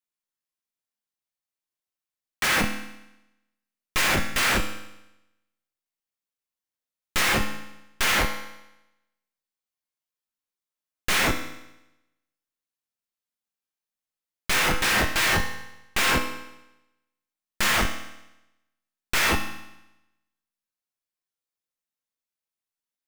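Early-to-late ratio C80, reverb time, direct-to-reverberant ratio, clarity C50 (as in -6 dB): 10.5 dB, 0.90 s, 4.0 dB, 8.0 dB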